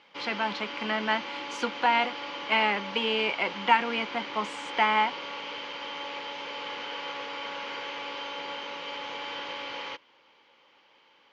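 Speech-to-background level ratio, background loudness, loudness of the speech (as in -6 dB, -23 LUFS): 8.5 dB, -36.0 LUFS, -27.5 LUFS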